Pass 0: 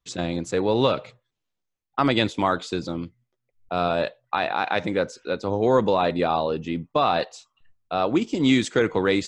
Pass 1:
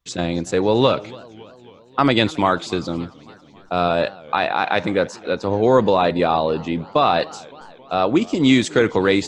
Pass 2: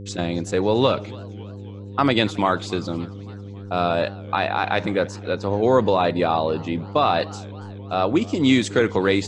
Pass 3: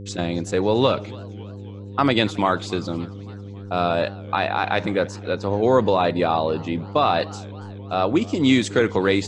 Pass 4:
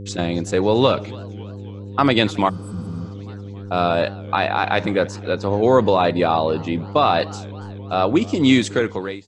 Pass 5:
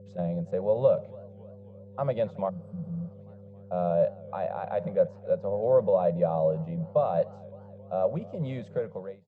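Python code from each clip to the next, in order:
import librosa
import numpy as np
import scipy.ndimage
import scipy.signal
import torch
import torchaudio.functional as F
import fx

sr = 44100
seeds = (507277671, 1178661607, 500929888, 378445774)

y1 = fx.echo_warbled(x, sr, ms=277, feedback_pct=63, rate_hz=2.8, cents=204, wet_db=-22.0)
y1 = F.gain(torch.from_numpy(y1), 4.5).numpy()
y2 = fx.dmg_buzz(y1, sr, base_hz=100.0, harmonics=5, level_db=-33.0, tilt_db=-6, odd_only=False)
y2 = F.gain(torch.from_numpy(y2), -2.5).numpy()
y3 = y2
y4 = fx.fade_out_tail(y3, sr, length_s=0.71)
y4 = fx.spec_repair(y4, sr, seeds[0], start_s=2.51, length_s=0.56, low_hz=250.0, high_hz=7700.0, source='after')
y4 = F.gain(torch.from_numpy(y4), 2.5).numpy()
y5 = fx.quant_float(y4, sr, bits=4)
y5 = fx.double_bandpass(y5, sr, hz=300.0, octaves=1.8)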